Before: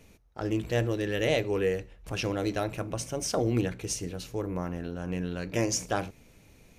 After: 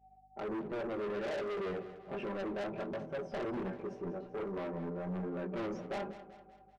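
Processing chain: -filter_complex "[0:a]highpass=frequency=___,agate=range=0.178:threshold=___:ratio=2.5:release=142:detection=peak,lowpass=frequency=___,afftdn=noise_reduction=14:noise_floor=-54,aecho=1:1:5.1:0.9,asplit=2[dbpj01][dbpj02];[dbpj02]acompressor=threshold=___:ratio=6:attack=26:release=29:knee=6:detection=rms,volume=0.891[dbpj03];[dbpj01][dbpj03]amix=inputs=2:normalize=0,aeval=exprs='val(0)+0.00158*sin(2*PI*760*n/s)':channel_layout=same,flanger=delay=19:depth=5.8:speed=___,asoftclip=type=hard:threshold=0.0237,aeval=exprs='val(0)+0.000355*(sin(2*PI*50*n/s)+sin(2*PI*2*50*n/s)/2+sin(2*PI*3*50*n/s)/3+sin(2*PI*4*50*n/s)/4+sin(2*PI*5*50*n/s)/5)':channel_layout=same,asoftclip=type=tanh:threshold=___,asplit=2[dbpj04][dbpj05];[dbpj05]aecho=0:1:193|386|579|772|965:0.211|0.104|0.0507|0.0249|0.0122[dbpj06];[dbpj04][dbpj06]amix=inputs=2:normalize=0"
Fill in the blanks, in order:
240, 0.00316, 1k, 0.0112, 1.3, 0.02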